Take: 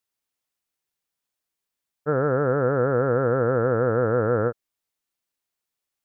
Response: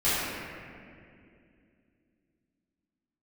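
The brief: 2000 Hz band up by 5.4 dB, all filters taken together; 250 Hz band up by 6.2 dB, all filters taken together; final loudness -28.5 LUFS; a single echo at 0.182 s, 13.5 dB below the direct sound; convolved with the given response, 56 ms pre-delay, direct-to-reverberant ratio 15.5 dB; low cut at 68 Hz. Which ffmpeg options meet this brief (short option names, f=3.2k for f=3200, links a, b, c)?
-filter_complex "[0:a]highpass=68,equalizer=f=250:t=o:g=7.5,equalizer=f=2k:t=o:g=8,aecho=1:1:182:0.211,asplit=2[a][b];[1:a]atrim=start_sample=2205,adelay=56[c];[b][c]afir=irnorm=-1:irlink=0,volume=-30.5dB[d];[a][d]amix=inputs=2:normalize=0,volume=-9dB"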